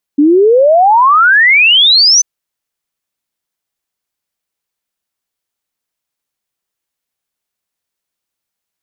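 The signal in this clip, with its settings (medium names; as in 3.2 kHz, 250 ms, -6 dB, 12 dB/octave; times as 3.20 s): log sweep 280 Hz -> 6.2 kHz 2.04 s -4 dBFS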